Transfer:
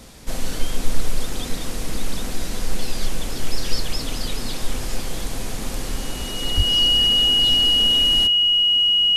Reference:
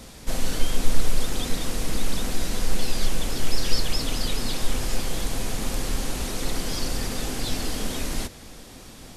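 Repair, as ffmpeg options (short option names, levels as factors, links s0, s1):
-filter_complex "[0:a]bandreject=f=2900:w=30,asplit=3[s0][s1][s2];[s0]afade=t=out:st=6.56:d=0.02[s3];[s1]highpass=f=140:w=0.5412,highpass=f=140:w=1.3066,afade=t=in:st=6.56:d=0.02,afade=t=out:st=6.68:d=0.02[s4];[s2]afade=t=in:st=6.68:d=0.02[s5];[s3][s4][s5]amix=inputs=3:normalize=0"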